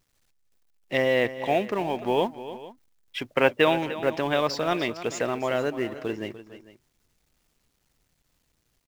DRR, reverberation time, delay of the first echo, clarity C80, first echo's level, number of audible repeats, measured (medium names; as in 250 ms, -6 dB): no reverb, no reverb, 297 ms, no reverb, -14.0 dB, 2